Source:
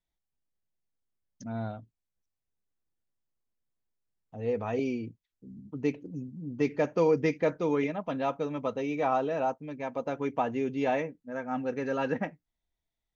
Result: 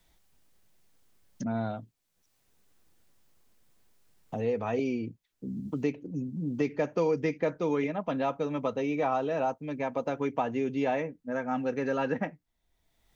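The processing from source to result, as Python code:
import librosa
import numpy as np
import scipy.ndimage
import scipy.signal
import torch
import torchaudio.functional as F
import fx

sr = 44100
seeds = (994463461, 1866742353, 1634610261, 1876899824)

y = fx.band_squash(x, sr, depth_pct=70)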